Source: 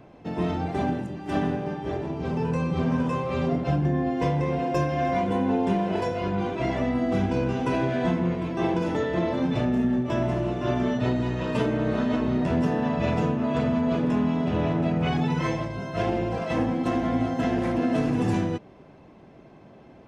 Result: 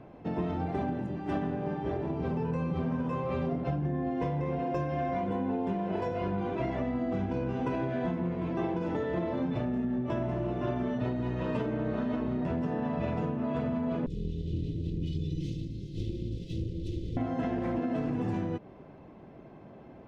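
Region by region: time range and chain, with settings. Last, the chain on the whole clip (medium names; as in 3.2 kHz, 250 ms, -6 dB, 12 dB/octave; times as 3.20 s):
14.06–17.17 s: comb filter that takes the minimum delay 2 ms + Chebyshev band-stop 300–3600 Hz, order 3
whole clip: low-pass 1.8 kHz 6 dB/octave; compression, threshold -28 dBFS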